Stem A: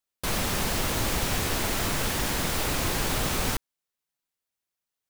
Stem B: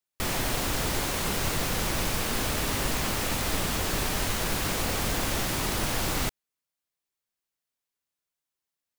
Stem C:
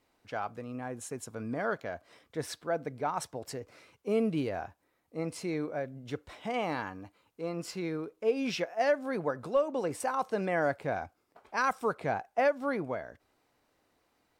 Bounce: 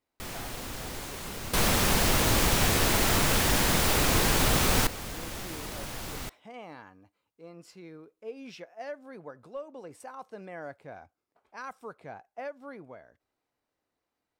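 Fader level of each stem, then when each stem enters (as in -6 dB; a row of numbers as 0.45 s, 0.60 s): +3.0 dB, -10.0 dB, -12.0 dB; 1.30 s, 0.00 s, 0.00 s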